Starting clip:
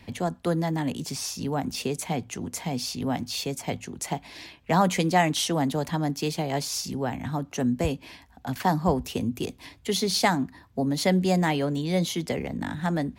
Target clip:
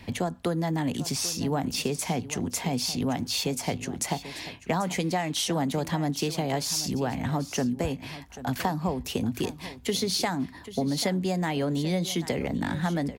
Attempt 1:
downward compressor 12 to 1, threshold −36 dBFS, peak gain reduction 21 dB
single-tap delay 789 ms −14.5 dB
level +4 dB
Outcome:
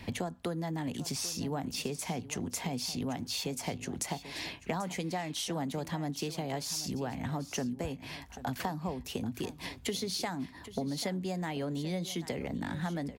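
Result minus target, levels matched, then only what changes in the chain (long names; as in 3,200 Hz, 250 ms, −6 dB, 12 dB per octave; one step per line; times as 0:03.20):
downward compressor: peak gain reduction +8 dB
change: downward compressor 12 to 1, threshold −27.5 dBFS, peak gain reduction 13 dB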